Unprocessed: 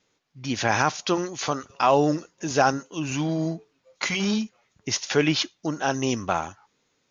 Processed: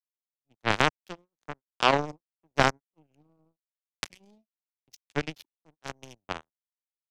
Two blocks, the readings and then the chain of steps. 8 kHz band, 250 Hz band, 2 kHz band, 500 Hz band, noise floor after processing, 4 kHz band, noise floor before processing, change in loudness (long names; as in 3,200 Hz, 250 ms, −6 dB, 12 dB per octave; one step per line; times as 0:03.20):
can't be measured, −12.0 dB, −3.0 dB, −7.5 dB, below −85 dBFS, −5.0 dB, −72 dBFS, −3.5 dB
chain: adaptive Wiener filter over 41 samples
in parallel at +0.5 dB: downward compressor, threshold −34 dBFS, peak gain reduction 18 dB
on the sum: power curve on the samples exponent 3
multiband upward and downward expander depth 70%